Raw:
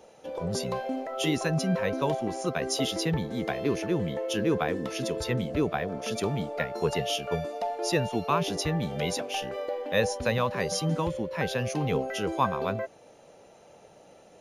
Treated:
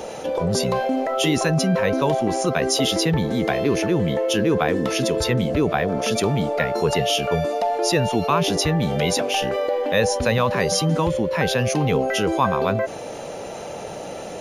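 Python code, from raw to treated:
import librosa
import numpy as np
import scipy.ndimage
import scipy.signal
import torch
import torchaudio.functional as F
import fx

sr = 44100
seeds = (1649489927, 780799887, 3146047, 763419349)

y = fx.env_flatten(x, sr, amount_pct=50)
y = y * librosa.db_to_amplitude(4.5)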